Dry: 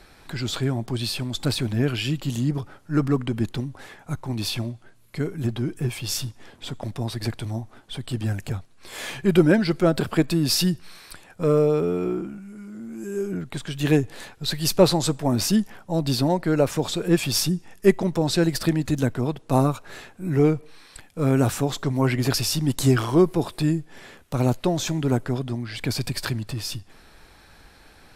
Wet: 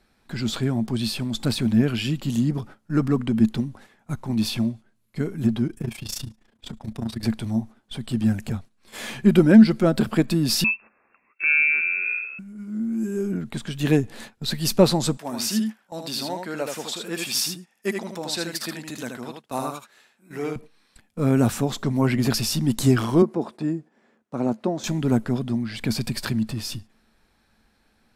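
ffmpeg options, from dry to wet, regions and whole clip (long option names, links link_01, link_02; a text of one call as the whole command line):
ffmpeg -i in.wav -filter_complex "[0:a]asettb=1/sr,asplit=3[link_01][link_02][link_03];[link_01]atrim=end=5.674[link_04];[link_02]atrim=start=5.67:end=7.23,asetpts=PTS-STARTPTS,afade=type=in:duration=0.004:curve=qsin,afade=type=out:start_time=1.556:duration=0.004:curve=qsin,volume=19.5dB,asoftclip=hard,volume=-19.5dB,tremolo=f=28:d=0.857[link_05];[link_03]atrim=start=7.226[link_06];[link_04][link_05]acrossfade=duration=0.004:curve1=hsin:curve2=qsin[link_07];[link_07][link_06]acrossfade=duration=0.004:curve1=qsin:curve2=hsin,asettb=1/sr,asplit=3[link_08][link_09][link_10];[link_08]atrim=end=10.644[link_11];[link_09]atrim=start=10.64:end=12.39,asetpts=PTS-STARTPTS,afade=type=in:duration=0.004:curve=qsin,afade=type=out:start_time=1.746:duration=0.004:curve=qsin,highpass=69,lowpass=frequency=2400:width_type=q:width=0.5098,lowpass=frequency=2400:width_type=q:width=0.6013,lowpass=frequency=2400:width_type=q:width=0.9,lowpass=frequency=2400:width_type=q:width=2.563,afreqshift=-2800[link_12];[link_10]atrim=start=12.386[link_13];[link_11][link_12]acrossfade=duration=0.004:curve1=hsin:curve2=qsin[link_14];[link_14][link_13]acrossfade=duration=0.004:curve1=qsin:curve2=hsin,asettb=1/sr,asplit=3[link_15][link_16][link_17];[link_15]atrim=end=15.174[link_18];[link_16]atrim=start=15.17:end=20.56,asetpts=PTS-STARTPTS,afade=type=in:duration=0.004:curve=qsin,afade=type=out:start_time=5.386:duration=0.004:curve=qsin,highpass=frequency=1200:poles=1,aecho=1:1:78:0.562,atrim=end_sample=237699[link_19];[link_17]atrim=start=20.556[link_20];[link_18][link_19]acrossfade=duration=0.004:curve1=hsin:curve2=qsin[link_21];[link_21][link_20]acrossfade=duration=0.004:curve1=qsin:curve2=hsin,asettb=1/sr,asplit=3[link_22][link_23][link_24];[link_22]atrim=end=23.224[link_25];[link_23]atrim=start=23.22:end=24.84,asetpts=PTS-STARTPTS,afade=type=in:duration=0.004:curve=qsin,afade=type=out:start_time=1.616:duration=0.004:curve=qsin,highpass=240,lowpass=5200,equalizer=frequency=3400:width_type=o:width=1.8:gain=-11.5[link_26];[link_24]atrim=start=24.836[link_27];[link_25][link_26]acrossfade=duration=0.004:curve1=hsin:curve2=qsin[link_28];[link_28][link_27]acrossfade=duration=0.004:curve1=qsin:curve2=hsin,agate=range=-13dB:threshold=-39dB:ratio=16:detection=peak,equalizer=frequency=220:width=5.9:gain=14,volume=-1dB" out.wav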